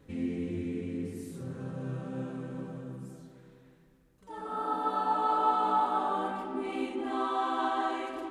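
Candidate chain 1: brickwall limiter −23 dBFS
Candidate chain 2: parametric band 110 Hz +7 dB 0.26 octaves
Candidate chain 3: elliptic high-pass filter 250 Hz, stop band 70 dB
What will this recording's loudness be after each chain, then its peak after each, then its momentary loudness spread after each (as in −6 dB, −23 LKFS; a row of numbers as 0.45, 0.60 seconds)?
−34.0, −32.0, −32.5 LKFS; −23.0, −15.0, −14.5 dBFS; 12, 14, 17 LU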